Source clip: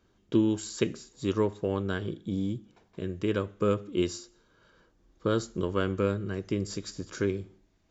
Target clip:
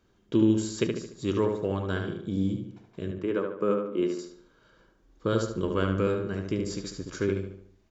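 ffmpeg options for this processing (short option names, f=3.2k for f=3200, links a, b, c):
-filter_complex "[0:a]asettb=1/sr,asplit=3[a][b][c];[a]atrim=end=3.114[d];[b]atrim=start=3.11:end=4.19,asetpts=PTS-STARTPTS,afade=t=in:d=0.004:c=qsin,afade=t=out:st=1.076:d=0.004:c=qsin,acrossover=split=180 2200:gain=0.112 1 0.224[e][f][g];[e][f][g]amix=inputs=3:normalize=0[h];[c]atrim=start=4.186[i];[d][h]acrossfade=d=0.004:c1=hsin:c2=qsin[j];[j][i]acrossfade=d=0.004:c1=qsin:c2=hsin,asplit=2[k][l];[l]adelay=73,lowpass=f=2.9k:p=1,volume=-4dB,asplit=2[m][n];[n]adelay=73,lowpass=f=2.9k:p=1,volume=0.48,asplit=2[o][p];[p]adelay=73,lowpass=f=2.9k:p=1,volume=0.48,asplit=2[q][r];[r]adelay=73,lowpass=f=2.9k:p=1,volume=0.48,asplit=2[s][t];[t]adelay=73,lowpass=f=2.9k:p=1,volume=0.48,asplit=2[u][v];[v]adelay=73,lowpass=f=2.9k:p=1,volume=0.48[w];[k][m][o][q][s][u][w]amix=inputs=7:normalize=0"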